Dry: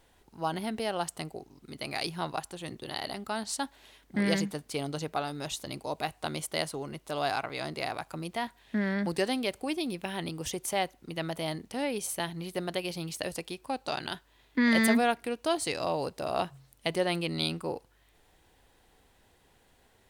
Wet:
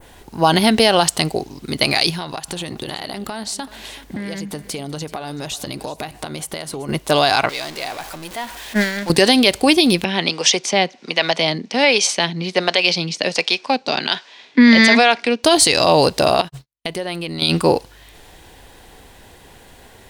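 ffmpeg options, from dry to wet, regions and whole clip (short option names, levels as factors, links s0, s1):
-filter_complex "[0:a]asettb=1/sr,asplit=3[s0][s1][s2];[s0]atrim=end=2.104[s3];[s1]atrim=start=2.1:end=6.89,asetpts=PTS-STARTPTS,afade=t=in:d=0.004:c=qsin,afade=t=out:st=4.786:d=0.004:c=qsin,acompressor=threshold=0.00708:ratio=16:attack=3.2:release=140:knee=1:detection=peak,aecho=1:1:381:0.141,atrim=end_sample=211239[s4];[s2]atrim=start=6.886[s5];[s3][s4]acrossfade=d=0.004:c1=hsin:c2=qsin[s6];[s6][s5]acrossfade=d=0.004:c1=qsin:c2=hsin,asettb=1/sr,asplit=3[s7][s8][s9];[s7]atrim=end=7.494[s10];[s8]atrim=start=7.49:end=9.1,asetpts=PTS-STARTPTS,afade=t=in:d=0.004:c=qsin,afade=t=out:st=1.606:d=0.004:c=qsin,aeval=exprs='val(0)+0.5*0.0266*sgn(val(0))':c=same,agate=range=0.158:threshold=0.0501:ratio=16:release=100:detection=peak,equalizer=f=110:w=0.44:g=-10[s11];[s9]atrim=start=9.096[s12];[s10][s11]acrossfade=d=0.004:c1=hsin:c2=qsin[s13];[s13][s12]acrossfade=d=0.004:c1=qsin:c2=hsin,asettb=1/sr,asplit=3[s14][s15][s16];[s14]atrim=end=10.044[s17];[s15]atrim=start=10.04:end=15.44,asetpts=PTS-STARTPTS,afade=t=in:d=0.004:c=qsin,afade=t=out:st=5.396:d=0.004:c=qsin,acrossover=split=400[s18][s19];[s18]aeval=exprs='val(0)*(1-0.7/2+0.7/2*cos(2*PI*1.3*n/s))':c=same[s20];[s19]aeval=exprs='val(0)*(1-0.7/2-0.7/2*cos(2*PI*1.3*n/s))':c=same[s21];[s20][s21]amix=inputs=2:normalize=0,highpass=f=190:w=0.5412,highpass=f=190:w=1.3066,equalizer=f=320:t=q:w=4:g=-6,equalizer=f=2300:t=q:w=4:g=5,equalizer=f=5400:t=q:w=4:g=3,lowpass=f=6600:w=0.5412,lowpass=f=6600:w=1.3066[s22];[s16]atrim=start=15.436[s23];[s17][s22]acrossfade=d=0.004:c1=hsin:c2=qsin[s24];[s24][s23]acrossfade=d=0.004:c1=qsin:c2=hsin,asettb=1/sr,asplit=3[s25][s26][s27];[s25]atrim=end=16.414[s28];[s26]atrim=start=16.41:end=17.42,asetpts=PTS-STARTPTS,afade=t=in:d=0.004:c=qsin,afade=t=out:st=1.006:d=0.004:c=qsin,asubboost=boost=8.5:cutoff=53,acompressor=threshold=0.00447:ratio=3:attack=3.2:release=140:knee=1:detection=peak,agate=range=0.002:threshold=0.002:ratio=16:release=100:detection=peak[s29];[s27]atrim=start=17.416[s30];[s28][s29]acrossfade=d=0.004:c1=hsin:c2=qsin[s31];[s31][s30]acrossfade=d=0.004:c1=qsin:c2=hsin,bandreject=f=1300:w=19,adynamicequalizer=threshold=0.00355:dfrequency=4300:dqfactor=0.78:tfrequency=4300:tqfactor=0.78:attack=5:release=100:ratio=0.375:range=4:mode=boostabove:tftype=bell,alimiter=level_in=10.6:limit=0.891:release=50:level=0:latency=1,volume=0.891"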